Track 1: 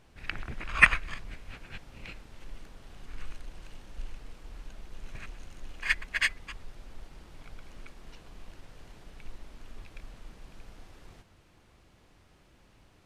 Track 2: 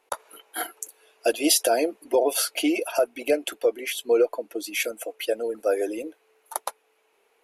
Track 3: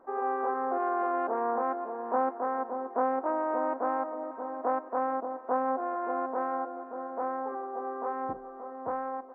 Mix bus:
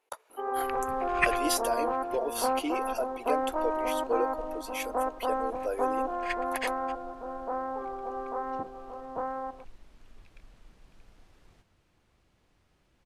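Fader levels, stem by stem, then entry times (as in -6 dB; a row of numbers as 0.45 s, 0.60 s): -8.0 dB, -10.0 dB, -0.5 dB; 0.40 s, 0.00 s, 0.30 s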